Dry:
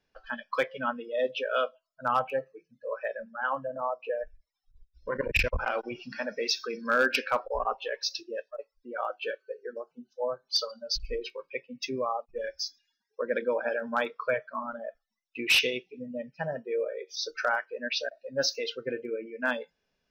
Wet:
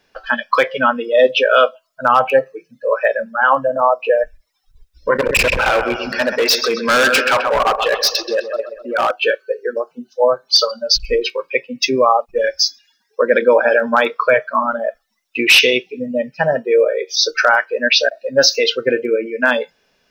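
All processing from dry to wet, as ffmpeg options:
ffmpeg -i in.wav -filter_complex "[0:a]asettb=1/sr,asplit=3[link_01][link_02][link_03];[link_01]atrim=end=5.184[link_04];[link_02]atrim=start=5.18:end=9.11,asetpts=PTS-STARTPTS,afade=type=in:duration=0.004:curve=qsin,afade=type=out:start_time=3.926:duration=0.004:curve=qsin,asplit=2[link_05][link_06];[link_06]adelay=129,lowpass=frequency=3600:poles=1,volume=-10dB,asplit=2[link_07][link_08];[link_08]adelay=129,lowpass=frequency=3600:poles=1,volume=0.53,asplit=2[link_09][link_10];[link_10]adelay=129,lowpass=frequency=3600:poles=1,volume=0.53,asplit=2[link_11][link_12];[link_12]adelay=129,lowpass=frequency=3600:poles=1,volume=0.53,asplit=2[link_13][link_14];[link_14]adelay=129,lowpass=frequency=3600:poles=1,volume=0.53,asplit=2[link_15][link_16];[link_16]adelay=129,lowpass=frequency=3600:poles=1,volume=0.53[link_17];[link_05][link_07][link_09][link_11][link_13][link_15][link_17]amix=inputs=7:normalize=0,atrim=end_sample=173313,volume=28.5dB,asoftclip=hard,volume=-28.5dB[link_18];[link_03]atrim=start=9.106[link_19];[link_04][link_18]acrossfade=duration=0.004:curve1=hsin:curve2=qsin[link_20];[link_20][link_19]acrossfade=duration=0.004:curve1=qsin:curve2=hsin,lowshelf=frequency=190:gain=-9.5,alimiter=level_in=19.5dB:limit=-1dB:release=50:level=0:latency=1,volume=-1dB" out.wav

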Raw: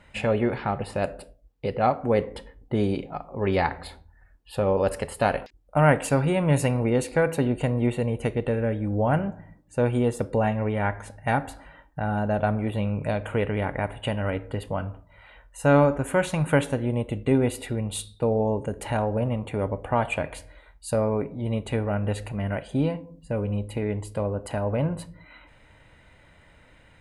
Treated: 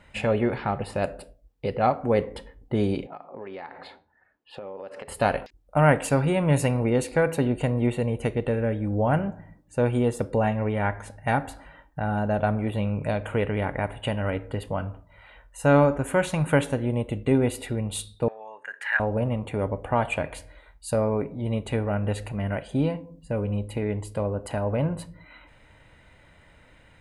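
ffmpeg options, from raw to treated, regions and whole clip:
ffmpeg -i in.wav -filter_complex "[0:a]asettb=1/sr,asplit=3[link_01][link_02][link_03];[link_01]atrim=end=3.074[link_04];[link_02]atrim=start=3.07:end=5.08,asetpts=PTS-STARTPTS,afade=type=in:duration=0.004:curve=qsin,afade=type=out:start_time=2.006:duration=0.004:curve=qsin,highpass=270,lowpass=3400,acompressor=threshold=-34dB:ratio=10:attack=3.2:release=140:knee=1:detection=peak[link_05];[link_03]atrim=start=5.076[link_06];[link_04][link_05]acrossfade=duration=0.004:curve1=hsin:curve2=qsin[link_07];[link_07][link_06]acrossfade=duration=0.004:curve1=qsin:curve2=hsin,asettb=1/sr,asplit=3[link_08][link_09][link_10];[link_08]atrim=end=18.284[link_11];[link_09]atrim=start=18.28:end=19,asetpts=PTS-STARTPTS,afade=type=in:duration=0.004:curve=qsin,afade=type=out:start_time=0.716:duration=0.004:curve=qsin,highpass=frequency=1700:width_type=q:width=12,aemphasis=mode=reproduction:type=75fm[link_12];[link_10]atrim=start=18.996[link_13];[link_11][link_12]acrossfade=duration=0.004:curve1=hsin:curve2=qsin[link_14];[link_14][link_13]acrossfade=duration=0.004:curve1=qsin:curve2=hsin" out.wav

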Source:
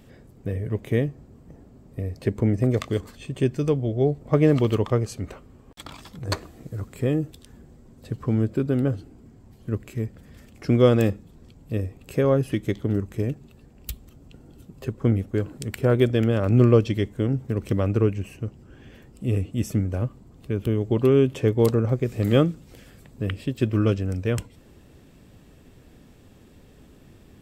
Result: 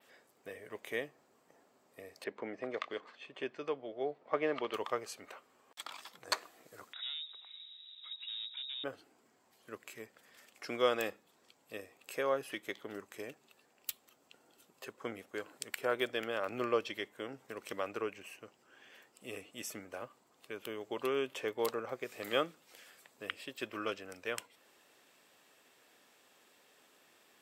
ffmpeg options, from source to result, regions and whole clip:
ffmpeg -i in.wav -filter_complex "[0:a]asettb=1/sr,asplit=3[link_01][link_02][link_03];[link_01]atrim=end=2.244[link_04];[link_02]atrim=start=2.24:end=4.74,asetpts=PTS-STARTPTS,afade=type=in:duration=0.004:curve=qsin,afade=type=out:start_time=2.496:duration=0.004:curve=qsin,highpass=150,lowpass=4300,aemphasis=mode=reproduction:type=50fm[link_05];[link_03]atrim=start=4.736[link_06];[link_04][link_05]acrossfade=duration=0.004:curve1=hsin:curve2=qsin[link_07];[link_07][link_06]acrossfade=duration=0.004:curve1=qsin:curve2=hsin,asettb=1/sr,asplit=3[link_08][link_09][link_10];[link_08]atrim=end=6.934[link_11];[link_09]atrim=start=6.93:end=8.84,asetpts=PTS-STARTPTS,afade=type=in:duration=0.004:curve=qsin,afade=type=out:start_time=1.906:duration=0.004:curve=qsin,asoftclip=type=hard:threshold=-25dB,acompressor=threshold=-38dB:ratio=5:attack=3.2:release=140:knee=1:detection=peak,lowpass=frequency=3300:width_type=q:width=0.5098,lowpass=frequency=3300:width_type=q:width=0.6013,lowpass=frequency=3300:width_type=q:width=0.9,lowpass=frequency=3300:width_type=q:width=2.563,afreqshift=-3900[link_12];[link_10]atrim=start=8.836[link_13];[link_11][link_12]acrossfade=duration=0.004:curve1=hsin:curve2=qsin[link_14];[link_14][link_13]acrossfade=duration=0.004:curve1=qsin:curve2=hsin,highpass=820,adynamicequalizer=threshold=0.00158:dfrequency=7200:dqfactor=0.81:tfrequency=7200:tqfactor=0.81:attack=5:release=100:ratio=0.375:range=3:mode=cutabove:tftype=bell,volume=-3dB" out.wav

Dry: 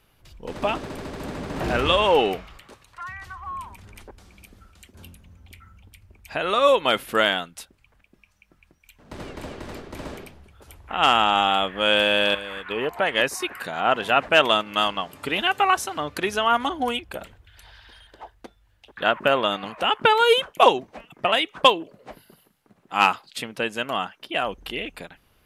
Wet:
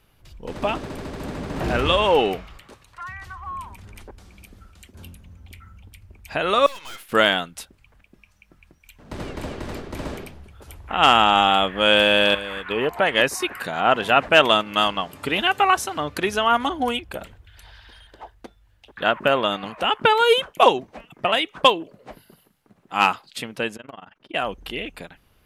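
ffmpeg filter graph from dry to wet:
ffmpeg -i in.wav -filter_complex "[0:a]asettb=1/sr,asplit=3[link_01][link_02][link_03];[link_01]atrim=end=6.664[link_04];[link_02]atrim=start=6.66:end=7.12,asetpts=PTS-STARTPTS,afade=type=in:duration=0.004:curve=qsin,afade=type=out:start_time=0.456:duration=0.004:curve=qsin,agate=range=-33dB:threshold=-36dB:ratio=3:release=100:detection=peak,highpass=1200,aeval=exprs='(tanh(89.1*val(0)+0.65)-tanh(0.65))/89.1':channel_layout=same[link_05];[link_03]atrim=start=7.116[link_06];[link_04][link_05]acrossfade=duration=0.004:curve1=hsin:curve2=qsin[link_07];[link_07][link_06]acrossfade=duration=0.004:curve1=qsin:curve2=hsin,asettb=1/sr,asplit=3[link_08][link_09][link_10];[link_08]atrim=end=23.764[link_11];[link_09]atrim=start=23.76:end=24.34,asetpts=PTS-STARTPTS,afade=type=in:duration=0.004:curve=qsin,afade=type=out:start_time=0.576:duration=0.004:curve=qsin,aemphasis=mode=reproduction:type=75fm,acompressor=threshold=-32dB:ratio=12:attack=3.2:release=140:knee=1:detection=peak,tremolo=f=22:d=0.947[link_12];[link_10]atrim=start=24.336[link_13];[link_11][link_12]acrossfade=duration=0.004:curve1=hsin:curve2=qsin[link_14];[link_14][link_13]acrossfade=duration=0.004:curve1=qsin:curve2=hsin,lowshelf=frequency=230:gain=3.5,dynaudnorm=framelen=590:gausssize=21:maxgain=11.5dB" out.wav

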